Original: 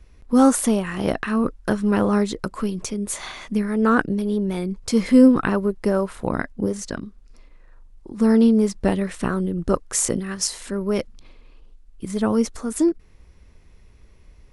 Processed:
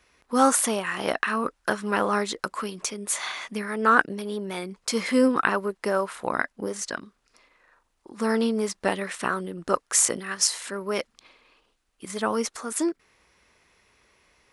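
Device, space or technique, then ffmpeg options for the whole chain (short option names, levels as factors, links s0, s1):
filter by subtraction: -filter_complex "[0:a]asplit=2[s0][s1];[s1]lowpass=1300,volume=-1[s2];[s0][s2]amix=inputs=2:normalize=0,volume=1.19"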